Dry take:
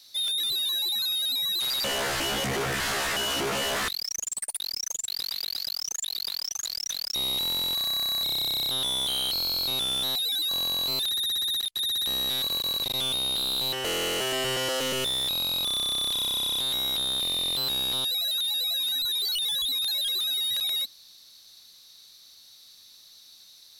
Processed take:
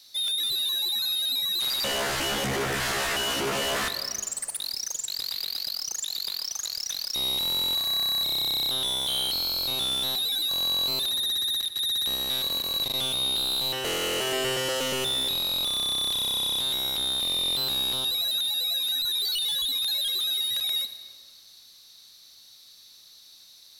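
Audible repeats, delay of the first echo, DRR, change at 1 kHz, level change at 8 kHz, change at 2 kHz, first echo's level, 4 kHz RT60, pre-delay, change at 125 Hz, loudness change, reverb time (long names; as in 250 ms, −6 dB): no echo audible, no echo audible, 9.0 dB, +0.5 dB, +0.5 dB, +0.5 dB, no echo audible, 1.4 s, 33 ms, +0.5 dB, +0.5 dB, 2.0 s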